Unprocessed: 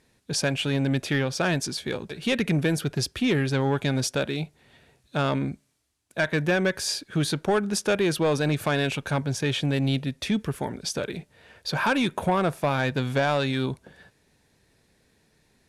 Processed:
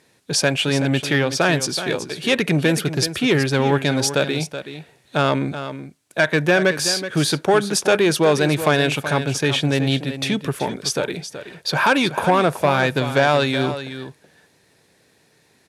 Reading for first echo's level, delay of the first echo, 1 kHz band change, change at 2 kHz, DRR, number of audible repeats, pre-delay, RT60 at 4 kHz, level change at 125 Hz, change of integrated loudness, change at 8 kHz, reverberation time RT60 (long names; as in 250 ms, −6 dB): −11.0 dB, 376 ms, +8.0 dB, +8.0 dB, no reverb audible, 1, no reverb audible, no reverb audible, +4.0 dB, +6.5 dB, +8.0 dB, no reverb audible